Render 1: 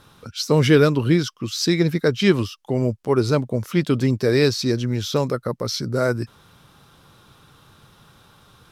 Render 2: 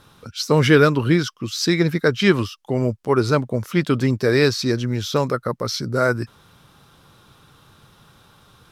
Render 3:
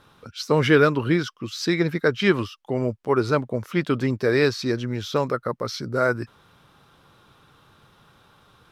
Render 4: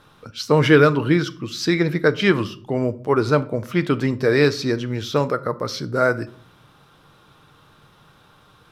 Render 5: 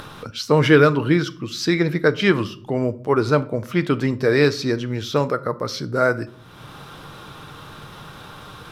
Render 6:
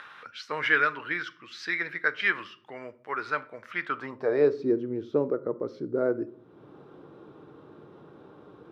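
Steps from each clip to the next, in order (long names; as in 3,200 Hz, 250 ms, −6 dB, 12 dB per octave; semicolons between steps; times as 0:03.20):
dynamic equaliser 1,400 Hz, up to +6 dB, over −36 dBFS, Q 1
bass and treble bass −4 dB, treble −7 dB; level −2 dB
convolution reverb RT60 0.55 s, pre-delay 6 ms, DRR 13 dB; level +2.5 dB
upward compression, threshold −26 dBFS
band-pass filter sweep 1,800 Hz → 360 Hz, 0:03.79–0:04.66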